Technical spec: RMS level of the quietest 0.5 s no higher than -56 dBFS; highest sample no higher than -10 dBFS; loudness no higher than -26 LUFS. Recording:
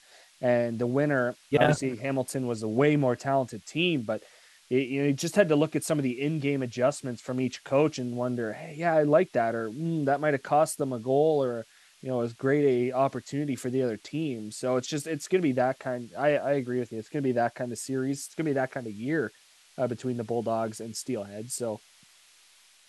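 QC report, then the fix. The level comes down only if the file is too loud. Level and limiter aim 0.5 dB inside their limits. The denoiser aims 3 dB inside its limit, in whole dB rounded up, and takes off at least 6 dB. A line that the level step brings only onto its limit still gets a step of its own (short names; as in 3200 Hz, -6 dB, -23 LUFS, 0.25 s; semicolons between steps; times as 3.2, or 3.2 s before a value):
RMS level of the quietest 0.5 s -59 dBFS: OK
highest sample -6.5 dBFS: fail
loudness -28.0 LUFS: OK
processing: limiter -10.5 dBFS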